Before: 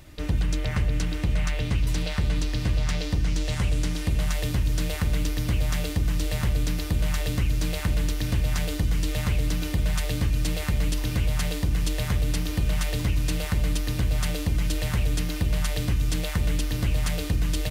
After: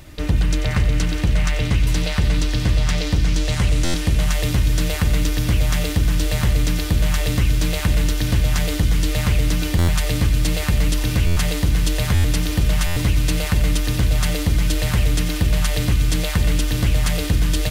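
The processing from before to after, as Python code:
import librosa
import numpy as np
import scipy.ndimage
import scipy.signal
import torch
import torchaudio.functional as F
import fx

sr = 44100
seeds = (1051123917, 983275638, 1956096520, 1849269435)

y = fx.echo_wet_highpass(x, sr, ms=91, feedback_pct=84, hz=1500.0, wet_db=-11.0)
y = fx.buffer_glitch(y, sr, at_s=(3.84, 9.78, 11.26, 12.14, 12.86), block=512, repeats=8)
y = y * 10.0 ** (6.5 / 20.0)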